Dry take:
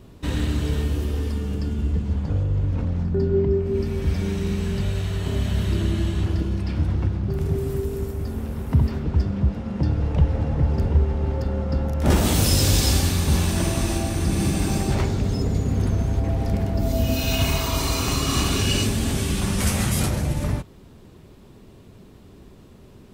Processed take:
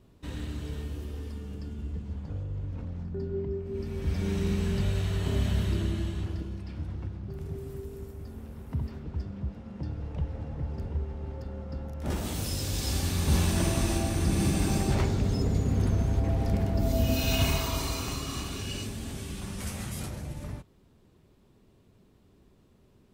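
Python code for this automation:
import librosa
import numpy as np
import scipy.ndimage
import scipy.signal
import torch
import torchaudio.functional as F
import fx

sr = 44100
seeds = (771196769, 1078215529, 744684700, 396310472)

y = fx.gain(x, sr, db=fx.line((3.65, -12.5), (4.37, -3.5), (5.47, -3.5), (6.65, -13.5), (12.7, -13.5), (13.36, -4.0), (17.45, -4.0), (18.46, -14.0)))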